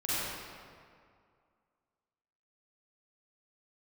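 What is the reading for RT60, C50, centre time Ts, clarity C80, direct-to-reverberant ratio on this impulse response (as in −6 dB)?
2.2 s, −7.0 dB, 170 ms, −4.0 dB, −11.5 dB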